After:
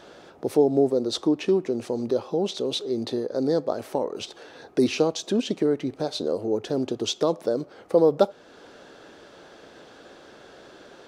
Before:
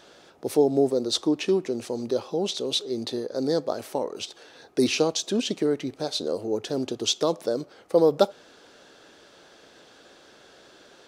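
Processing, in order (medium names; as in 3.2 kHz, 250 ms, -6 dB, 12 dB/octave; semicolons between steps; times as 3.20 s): treble shelf 2.3 kHz -9 dB; in parallel at +1 dB: compression, threshold -36 dBFS, peak gain reduction 20.5 dB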